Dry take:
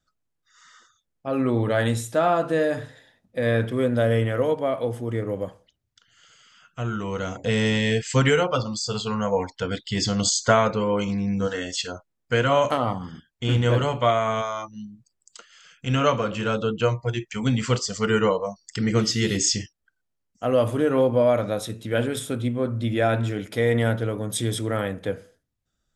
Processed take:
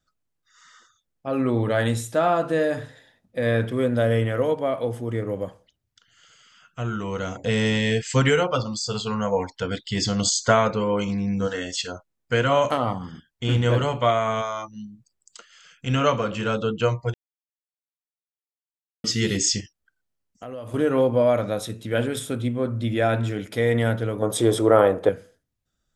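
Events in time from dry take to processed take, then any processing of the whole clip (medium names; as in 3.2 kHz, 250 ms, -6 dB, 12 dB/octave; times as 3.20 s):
17.14–19.04 s: mute
19.60–20.74 s: compression 4:1, threshold -35 dBFS
24.22–25.09 s: high-order bell 650 Hz +12.5 dB 2.3 oct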